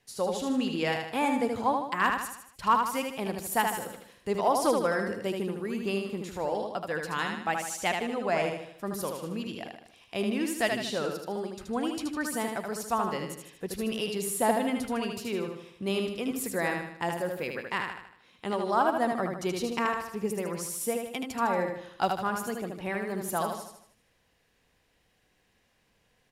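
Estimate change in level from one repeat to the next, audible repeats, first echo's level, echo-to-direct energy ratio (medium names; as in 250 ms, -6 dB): -6.5 dB, 5, -4.5 dB, -3.5 dB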